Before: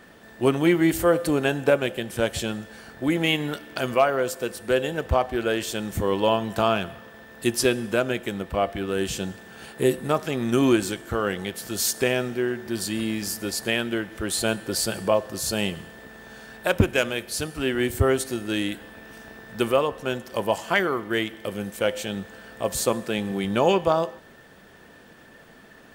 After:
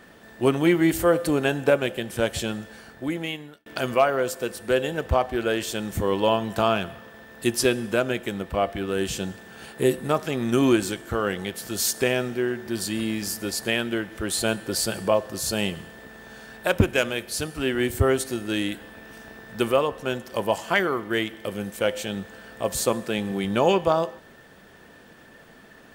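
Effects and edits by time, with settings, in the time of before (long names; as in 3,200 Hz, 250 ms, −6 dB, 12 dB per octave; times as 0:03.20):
0:02.67–0:03.66: fade out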